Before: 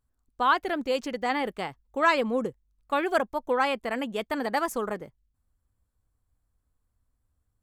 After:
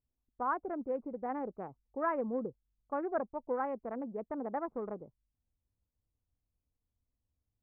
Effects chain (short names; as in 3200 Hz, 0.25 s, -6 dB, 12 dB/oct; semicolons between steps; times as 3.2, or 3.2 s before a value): Wiener smoothing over 25 samples; Bessel low-pass 990 Hz, order 8; low shelf 64 Hz -7.5 dB; gain -6.5 dB